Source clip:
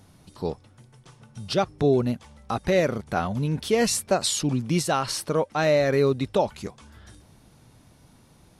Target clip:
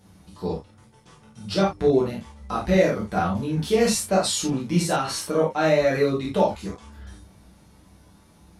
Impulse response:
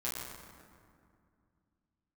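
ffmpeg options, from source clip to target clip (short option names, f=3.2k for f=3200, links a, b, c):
-filter_complex "[0:a]asettb=1/sr,asplit=3[a][b][c];[a]atrim=end=4.964[d];[b]atrim=start=4.96:end=5.93,asetpts=PTS-STARTPTS,afade=t=in:d=0.004:c=qsin,afade=t=out:st=0.966:d=0.004:c=qsin,bandreject=f=4.8k:w=13[e];[c]atrim=start=5.926[f];[d][e]acrossfade=d=0.004:c1=hsin:c2=qsin[g];[g][f]acrossfade=d=0.004:c1=qsin:c2=hsin[h];[1:a]atrim=start_sample=2205,atrim=end_sample=4410[i];[h][i]afir=irnorm=-1:irlink=0"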